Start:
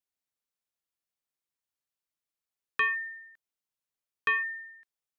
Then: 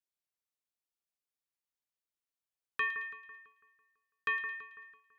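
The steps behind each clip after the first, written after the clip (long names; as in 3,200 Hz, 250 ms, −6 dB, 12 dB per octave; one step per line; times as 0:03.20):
echo with a time of its own for lows and highs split 1,900 Hz, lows 166 ms, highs 110 ms, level −10 dB
level −6 dB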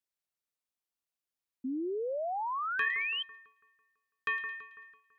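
sound drawn into the spectrogram rise, 0:01.64–0:03.23, 250–3,200 Hz −34 dBFS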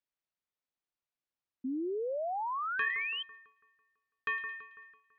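high-frequency loss of the air 150 metres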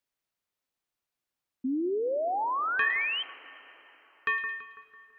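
dense smooth reverb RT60 4.1 s, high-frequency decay 0.7×, DRR 16.5 dB
level +5.5 dB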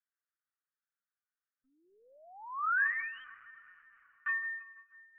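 flat-topped band-pass 1,500 Hz, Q 2.7
linear-prediction vocoder at 8 kHz pitch kept
Ogg Vorbis 96 kbit/s 32,000 Hz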